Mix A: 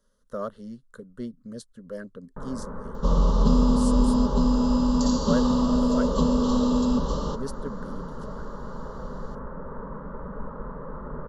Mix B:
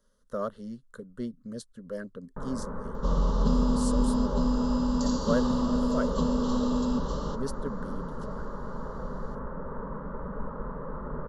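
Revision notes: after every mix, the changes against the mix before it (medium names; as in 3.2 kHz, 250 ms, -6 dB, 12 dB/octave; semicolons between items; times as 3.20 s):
second sound -5.0 dB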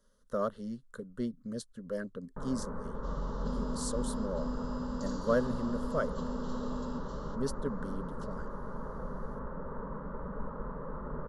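first sound -3.5 dB; second sound -12.0 dB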